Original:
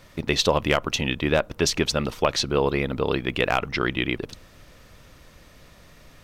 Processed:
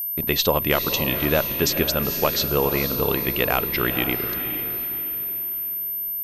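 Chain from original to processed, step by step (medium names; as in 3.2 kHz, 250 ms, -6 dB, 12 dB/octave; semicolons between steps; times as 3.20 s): expander -40 dBFS; echo that smears into a reverb 485 ms, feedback 40%, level -8.5 dB; whistle 13 kHz -25 dBFS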